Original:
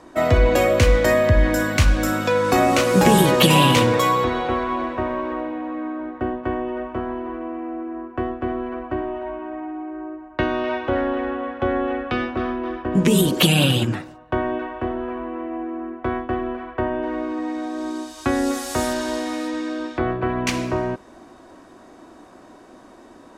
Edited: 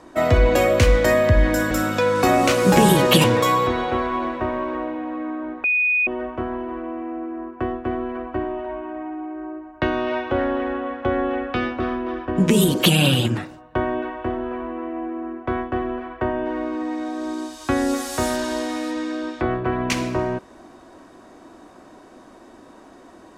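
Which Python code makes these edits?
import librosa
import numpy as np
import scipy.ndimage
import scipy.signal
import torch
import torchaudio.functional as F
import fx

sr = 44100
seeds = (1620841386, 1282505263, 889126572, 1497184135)

y = fx.edit(x, sr, fx.cut(start_s=1.71, length_s=0.29),
    fx.cut(start_s=3.53, length_s=0.28),
    fx.bleep(start_s=6.21, length_s=0.43, hz=2480.0, db=-16.0), tone=tone)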